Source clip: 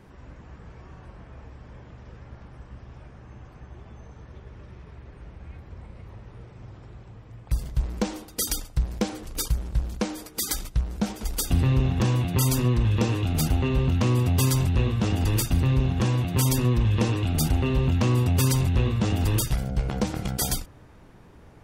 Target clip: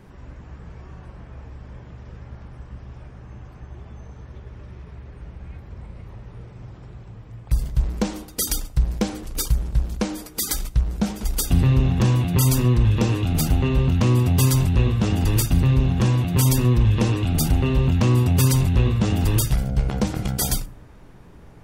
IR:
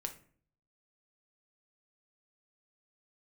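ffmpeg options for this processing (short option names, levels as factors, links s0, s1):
-filter_complex "[0:a]asplit=2[s0][s1];[1:a]atrim=start_sample=2205,lowshelf=f=290:g=11,highshelf=f=7300:g=10[s2];[s1][s2]afir=irnorm=-1:irlink=0,volume=0.299[s3];[s0][s3]amix=inputs=2:normalize=0"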